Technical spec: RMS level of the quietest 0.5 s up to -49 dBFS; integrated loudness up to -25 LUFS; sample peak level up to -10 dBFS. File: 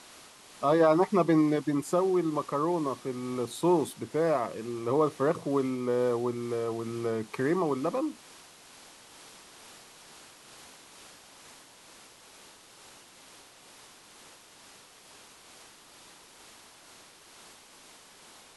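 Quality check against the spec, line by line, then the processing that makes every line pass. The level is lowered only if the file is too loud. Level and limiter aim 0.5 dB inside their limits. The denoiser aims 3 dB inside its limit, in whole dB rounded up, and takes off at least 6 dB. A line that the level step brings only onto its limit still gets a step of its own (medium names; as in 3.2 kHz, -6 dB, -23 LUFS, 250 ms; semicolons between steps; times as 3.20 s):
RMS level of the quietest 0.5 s -54 dBFS: pass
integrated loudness -28.5 LUFS: pass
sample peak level -11.0 dBFS: pass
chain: none needed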